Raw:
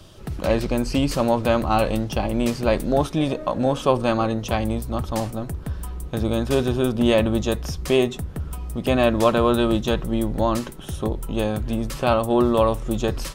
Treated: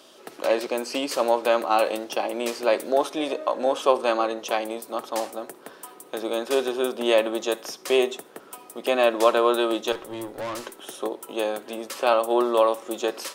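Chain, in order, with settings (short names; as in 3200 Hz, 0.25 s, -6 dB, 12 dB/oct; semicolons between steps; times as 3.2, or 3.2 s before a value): hum 50 Hz, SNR 20 dB; HPF 350 Hz 24 dB/oct; 9.92–10.64 tube stage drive 28 dB, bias 0.4; on a send: reverb RT60 0.45 s, pre-delay 48 ms, DRR 20 dB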